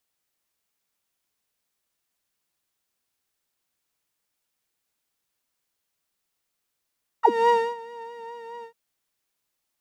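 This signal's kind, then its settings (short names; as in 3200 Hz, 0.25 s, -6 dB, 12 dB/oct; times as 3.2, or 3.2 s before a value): synth patch with vibrato A#5, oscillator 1 saw, interval 0 st, detune 7 cents, oscillator 2 level -8 dB, sub -13 dB, noise -29.5 dB, filter bandpass, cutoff 180 Hz, Q 9.2, filter envelope 3 oct, filter decay 0.07 s, filter sustain 10%, attack 0.252 s, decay 0.27 s, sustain -21 dB, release 0.09 s, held 1.41 s, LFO 4.7 Hz, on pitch 33 cents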